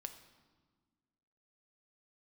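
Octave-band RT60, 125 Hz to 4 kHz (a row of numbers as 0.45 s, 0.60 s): 1.8 s, 2.1 s, 1.5 s, 1.5 s, 1.1 s, 1.1 s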